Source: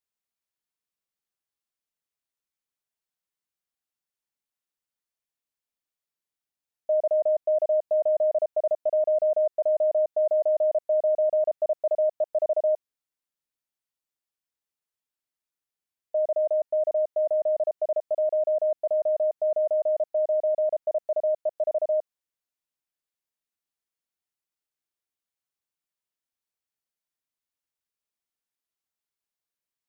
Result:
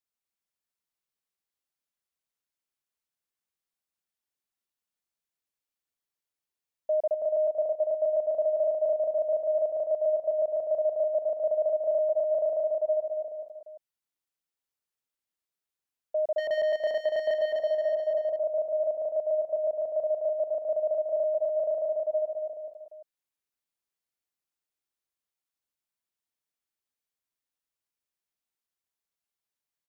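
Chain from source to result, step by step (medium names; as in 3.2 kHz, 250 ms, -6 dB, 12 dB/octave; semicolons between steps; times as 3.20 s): 16.38–17.34 s: waveshaping leveller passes 2; on a send: bouncing-ball echo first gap 250 ms, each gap 0.9×, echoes 5; on the sum: trim -3 dB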